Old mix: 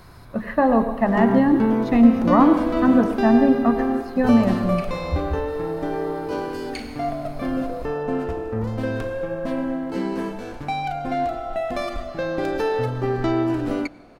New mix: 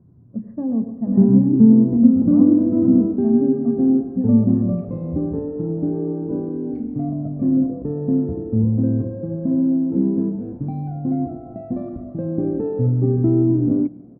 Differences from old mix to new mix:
background +10.5 dB
master: add flat-topped band-pass 170 Hz, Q 0.9

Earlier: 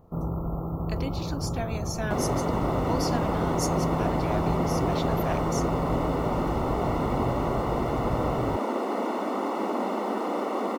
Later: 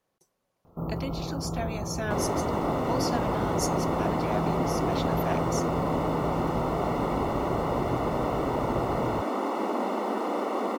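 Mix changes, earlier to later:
first sound: entry +0.65 s
master: add low-shelf EQ 100 Hz −7 dB

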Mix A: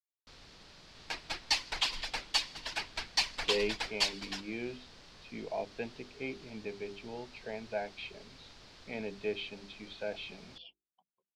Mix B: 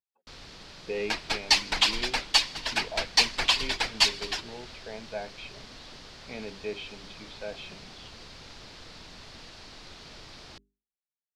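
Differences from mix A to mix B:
speech: entry −2.60 s
first sound +8.5 dB
second sound +8.5 dB

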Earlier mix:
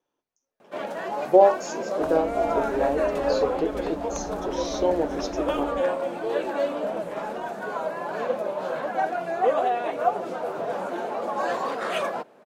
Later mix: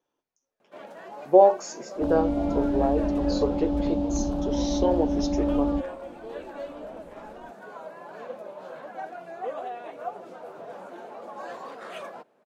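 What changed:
first sound −11.5 dB
second sound +10.0 dB

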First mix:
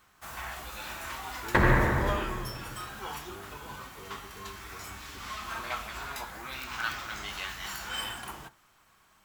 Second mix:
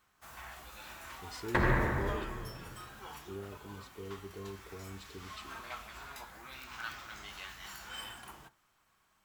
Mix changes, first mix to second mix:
speech +5.5 dB
first sound −9.0 dB
second sound −6.0 dB

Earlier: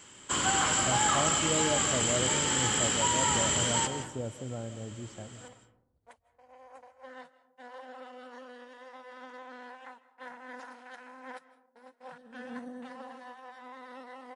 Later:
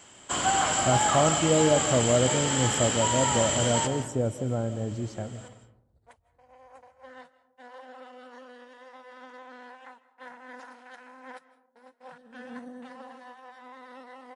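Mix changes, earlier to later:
speech +9.5 dB
first sound: add parametric band 690 Hz +11.5 dB 0.39 octaves

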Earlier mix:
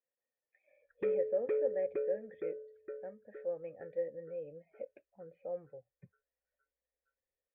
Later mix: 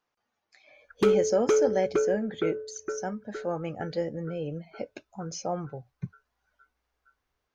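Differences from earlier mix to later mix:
speech +3.5 dB
master: remove formant resonators in series e

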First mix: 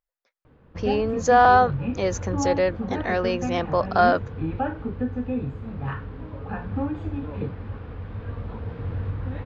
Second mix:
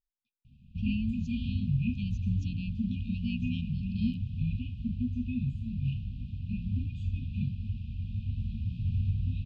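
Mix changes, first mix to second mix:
speech: add high-frequency loss of the air 490 metres
master: add linear-phase brick-wall band-stop 250–2,400 Hz

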